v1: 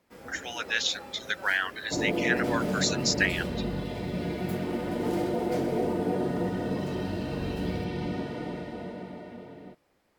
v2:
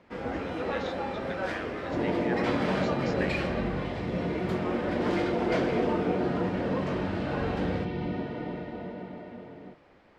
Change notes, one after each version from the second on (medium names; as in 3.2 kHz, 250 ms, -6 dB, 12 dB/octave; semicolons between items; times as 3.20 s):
speech -12.0 dB; first sound +12.0 dB; master: add low-pass 3 kHz 12 dB/octave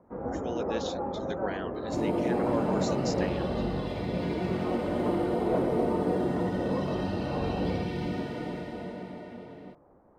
speech: remove resonant high-pass 1.7 kHz, resonance Q 1.8; first sound: add low-pass 1.1 kHz 24 dB/octave; master: remove low-pass 3 kHz 12 dB/octave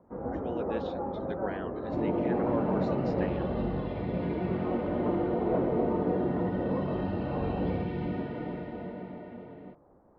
master: add distance through air 410 m